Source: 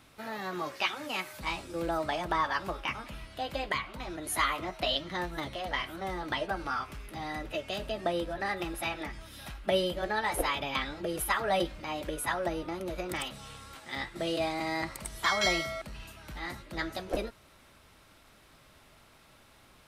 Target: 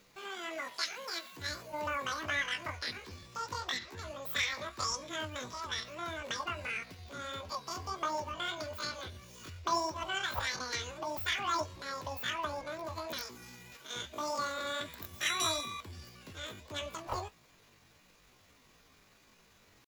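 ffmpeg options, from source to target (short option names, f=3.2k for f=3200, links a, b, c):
-af "bandreject=f=4.8k:w=5.2,asetrate=78577,aresample=44100,atempo=0.561231,flanger=delay=3.8:depth=7.2:regen=-57:speed=1.6:shape=triangular"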